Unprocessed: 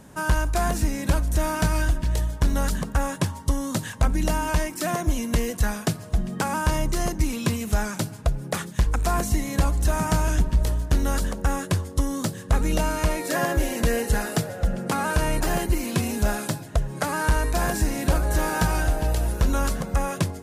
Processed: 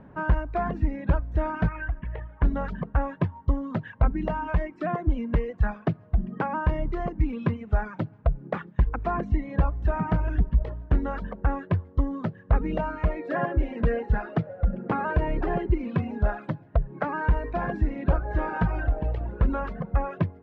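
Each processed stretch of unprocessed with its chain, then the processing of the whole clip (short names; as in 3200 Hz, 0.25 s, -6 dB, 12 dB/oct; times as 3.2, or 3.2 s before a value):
1.68–2.43 LPF 2600 Hz 24 dB/oct + tilt shelf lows -5 dB, about 940 Hz + mismatched tape noise reduction encoder only
14.9–15.88 bell 390 Hz +6.5 dB 0.33 oct + three-band squash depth 40%
whole clip: reverb removal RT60 1.7 s; Bessel low-pass 1500 Hz, order 4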